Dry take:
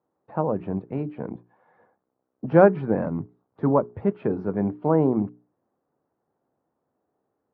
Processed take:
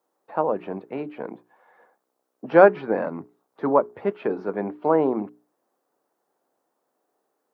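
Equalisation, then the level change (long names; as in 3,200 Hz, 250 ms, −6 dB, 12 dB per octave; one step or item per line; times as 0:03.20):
high-pass filter 350 Hz 12 dB per octave
high-shelf EQ 2,200 Hz +10 dB
+2.5 dB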